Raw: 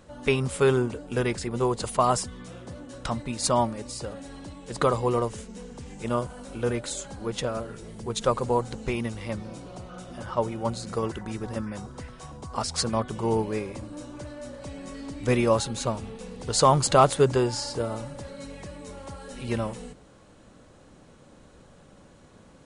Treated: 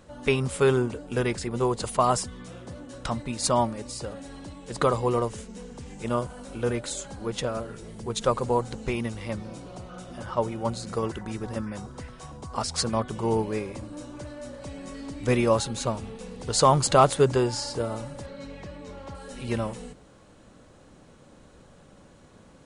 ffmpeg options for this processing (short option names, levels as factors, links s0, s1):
-filter_complex "[0:a]asettb=1/sr,asplit=3[s0][s1][s2];[s0]atrim=end=18.264[s3];[s1]atrim=start=18.26:end=19.15,asetpts=PTS-STARTPTS,afade=t=in:d=0.004:c=qsin,afade=t=out:st=0.886:d=0.004:c=qsin,lowpass=4800[s4];[s2]atrim=start=19.146[s5];[s3][s4]acrossfade=d=0.004:c1=hsin:c2=qsin[s6];[s6][s5]acrossfade=d=0.004:c1=qsin:c2=hsin"